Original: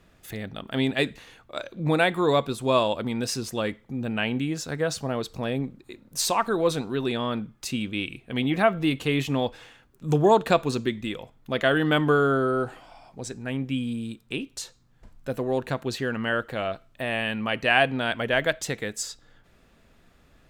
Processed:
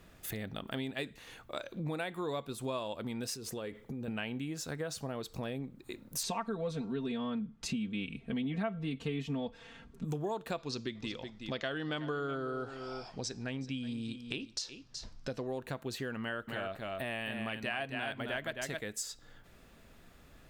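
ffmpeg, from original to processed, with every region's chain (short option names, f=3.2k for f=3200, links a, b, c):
-filter_complex "[0:a]asettb=1/sr,asplit=3[a][b][c];[a]atrim=end=3.344[d];[b]atrim=start=3.34:end=4.08,asetpts=PTS-STARTPTS,afade=t=in:d=0.004:c=qsin,afade=t=out:st=0.736:d=0.004:c=qsin,equalizer=f=440:t=o:w=0.4:g=8.5,acompressor=threshold=-34dB:ratio=5:attack=3.2:release=140:knee=1:detection=peak[e];[c]atrim=start=4.076[f];[d][e]acrossfade=d=0.004:c1=hsin:c2=qsin[g];[g][f]acrossfade=d=0.004:c1=qsin:c2=hsin,asettb=1/sr,asplit=3[h][i][j];[h]atrim=end=6.234[k];[i]atrim=start=6.23:end=10.05,asetpts=PTS-STARTPTS,afade=t=in:d=0.004:c=qsin,afade=t=out:st=3.816:d=0.004:c=qsin,lowpass=5.9k,equalizer=f=120:t=o:w=2.2:g=11,aecho=1:1:4.4:0.81,atrim=end_sample=168462[l];[j]atrim=start=10.046[m];[k][l]acrossfade=d=0.004:c1=hsin:c2=qsin[n];[n][m]acrossfade=d=0.004:c1=qsin:c2=hsin,asettb=1/sr,asplit=3[o][p][q];[o]atrim=end=10.584[r];[p]atrim=start=10.58:end=15.47,asetpts=PTS-STARTPTS,afade=t=in:d=0.004:c=qsin,afade=t=out:st=4.886:d=0.004:c=qsin,lowpass=f=5.2k:t=q:w=3.6,aecho=1:1:372:0.168,atrim=end_sample=215649[s];[q]atrim=start=15.466[t];[r][s]acrossfade=d=0.004:c1=hsin:c2=qsin[u];[u][t]acrossfade=d=0.004:c1=qsin:c2=hsin,asettb=1/sr,asplit=3[v][w][x];[v]atrim=end=16.214[y];[w]atrim=start=16.21:end=18.81,asetpts=PTS-STARTPTS,afade=t=in:d=0.004:c=qsin,afade=t=out:st=2.596:d=0.004:c=qsin,bandreject=f=500:w=9.8,aecho=1:1:264:0.562,atrim=end_sample=114660[z];[x]atrim=start=18.806[aa];[y][z]acrossfade=d=0.004:c1=hsin:c2=qsin[ab];[ab][aa]acrossfade=d=0.004:c1=qsin:c2=hsin,highshelf=f=11k:g=8.5,acompressor=threshold=-37dB:ratio=4"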